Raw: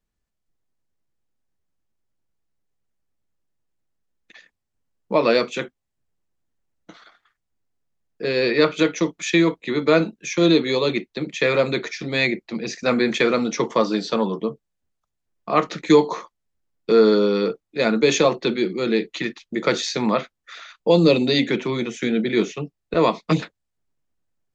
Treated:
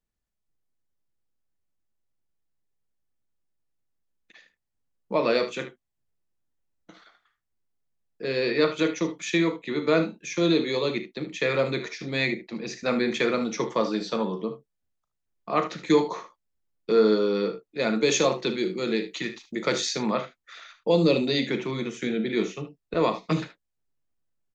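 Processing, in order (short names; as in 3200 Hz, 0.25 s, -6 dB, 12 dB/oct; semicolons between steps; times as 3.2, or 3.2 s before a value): 17.93–19.96 high shelf 6400 Hz +10.5 dB; early reflections 37 ms -13.5 dB, 59 ms -16.5 dB, 75 ms -13 dB; gain -6 dB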